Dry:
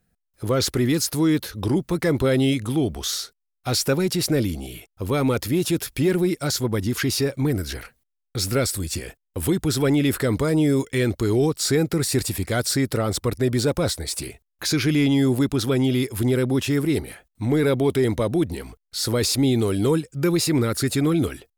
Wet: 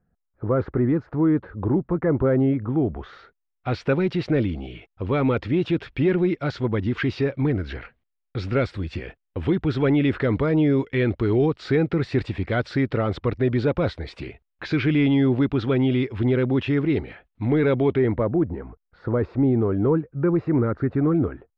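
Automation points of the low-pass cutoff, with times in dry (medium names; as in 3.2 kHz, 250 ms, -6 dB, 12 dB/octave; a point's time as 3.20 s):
low-pass 24 dB/octave
2.68 s 1.5 kHz
3.92 s 3 kHz
17.82 s 3 kHz
18.38 s 1.5 kHz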